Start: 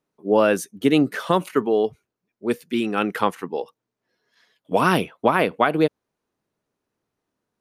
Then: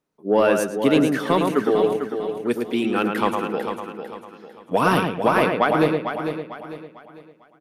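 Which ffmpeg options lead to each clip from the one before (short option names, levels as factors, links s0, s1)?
-filter_complex "[0:a]asplit=2[s0][s1];[s1]adelay=110,lowpass=f=2300:p=1,volume=0.596,asplit=2[s2][s3];[s3]adelay=110,lowpass=f=2300:p=1,volume=0.28,asplit=2[s4][s5];[s5]adelay=110,lowpass=f=2300:p=1,volume=0.28,asplit=2[s6][s7];[s7]adelay=110,lowpass=f=2300:p=1,volume=0.28[s8];[s2][s4][s6][s8]amix=inputs=4:normalize=0[s9];[s0][s9]amix=inputs=2:normalize=0,asoftclip=type=tanh:threshold=0.531,asplit=2[s10][s11];[s11]aecho=0:1:449|898|1347|1796:0.398|0.143|0.0516|0.0186[s12];[s10][s12]amix=inputs=2:normalize=0"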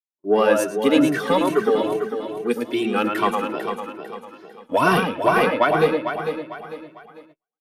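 -filter_complex "[0:a]agate=range=0.0112:threshold=0.00562:ratio=16:detection=peak,lowshelf=f=170:g=-7,asplit=2[s0][s1];[s1]adelay=2.1,afreqshift=2.4[s2];[s0][s2]amix=inputs=2:normalize=1,volume=1.68"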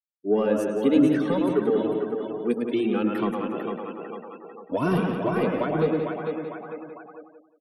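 -filter_complex "[0:a]afftfilt=real='re*gte(hypot(re,im),0.0126)':imag='im*gte(hypot(re,im),0.0126)':win_size=1024:overlap=0.75,asplit=2[s0][s1];[s1]adelay=178,lowpass=f=3600:p=1,volume=0.398,asplit=2[s2][s3];[s3]adelay=178,lowpass=f=3600:p=1,volume=0.25,asplit=2[s4][s5];[s5]adelay=178,lowpass=f=3600:p=1,volume=0.25[s6];[s0][s2][s4][s6]amix=inputs=4:normalize=0,acrossover=split=420[s7][s8];[s8]acompressor=threshold=0.00891:ratio=2[s9];[s7][s9]amix=inputs=2:normalize=0"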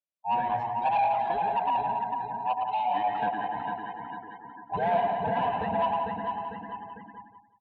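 -af "afftfilt=real='real(if(lt(b,1008),b+24*(1-2*mod(floor(b/24),2)),b),0)':imag='imag(if(lt(b,1008),b+24*(1-2*mod(floor(b/24),2)),b),0)':win_size=2048:overlap=0.75,asoftclip=type=tanh:threshold=0.119,highpass=180,equalizer=f=200:t=q:w=4:g=4,equalizer=f=360:t=q:w=4:g=-8,equalizer=f=580:t=q:w=4:g=9,equalizer=f=850:t=q:w=4:g=-3,equalizer=f=1300:t=q:w=4:g=-6,equalizer=f=2000:t=q:w=4:g=-9,lowpass=f=3100:w=0.5412,lowpass=f=3100:w=1.3066"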